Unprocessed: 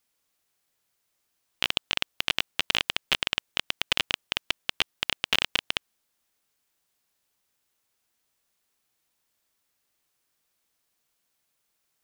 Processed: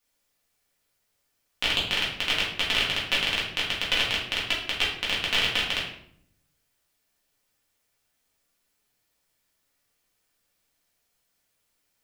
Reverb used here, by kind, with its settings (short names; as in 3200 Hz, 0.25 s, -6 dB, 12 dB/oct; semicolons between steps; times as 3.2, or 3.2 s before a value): shoebox room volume 120 m³, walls mixed, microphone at 1.9 m; gain -4.5 dB